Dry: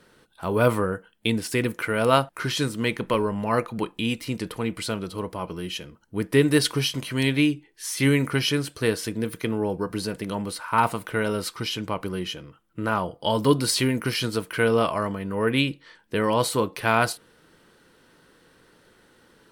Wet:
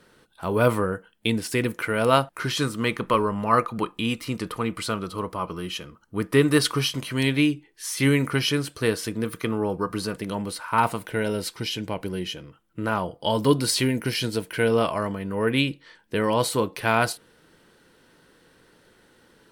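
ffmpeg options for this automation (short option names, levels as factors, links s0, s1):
-af "asetnsamples=n=441:p=0,asendcmd='2.58 equalizer g 10.5;6.89 equalizer g 2.5;9.14 equalizer g 10;10.17 equalizer g -1;11.06 equalizer g -12.5;12.36 equalizer g -3;13.86 equalizer g -11.5;14.71 equalizer g -2.5',equalizer=f=1200:t=o:w=0.32:g=0.5"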